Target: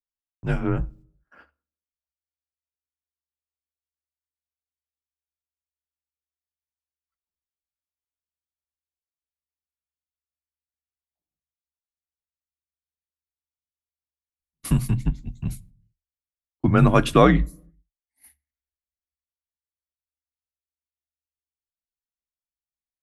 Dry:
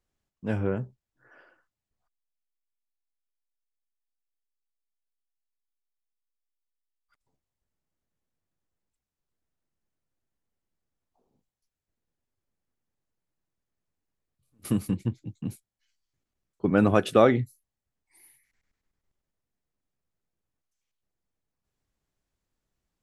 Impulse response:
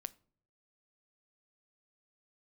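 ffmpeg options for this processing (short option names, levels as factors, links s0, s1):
-filter_complex "[0:a]equalizer=f=510:t=o:w=0.42:g=-7.5,agate=range=0.0282:threshold=0.00158:ratio=16:detection=peak,bandreject=f=50:t=h:w=6,bandreject=f=100:t=h:w=6,bandreject=f=150:t=h:w=6,bandreject=f=200:t=h:w=6,afreqshift=-73,asplit=2[s0][s1];[1:a]atrim=start_sample=2205[s2];[s1][s2]afir=irnorm=-1:irlink=0,volume=2.99[s3];[s0][s3]amix=inputs=2:normalize=0,volume=0.708"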